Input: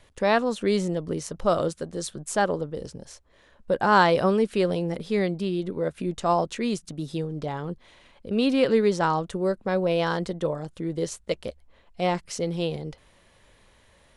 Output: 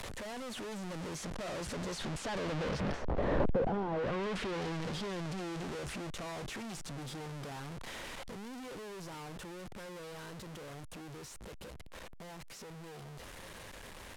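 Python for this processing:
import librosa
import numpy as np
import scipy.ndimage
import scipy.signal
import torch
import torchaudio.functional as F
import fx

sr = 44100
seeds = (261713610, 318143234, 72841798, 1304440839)

p1 = np.sign(x) * np.sqrt(np.mean(np.square(x)))
p2 = fx.doppler_pass(p1, sr, speed_mps=15, closest_m=2.2, pass_at_s=3.41)
p3 = fx.rider(p2, sr, range_db=3, speed_s=2.0)
p4 = p2 + F.gain(torch.from_numpy(p3), 1.0).numpy()
p5 = fx.env_lowpass_down(p4, sr, base_hz=660.0, full_db=-27.0)
p6 = fx.band_squash(p5, sr, depth_pct=40)
y = F.gain(torch.from_numpy(p6), 1.0).numpy()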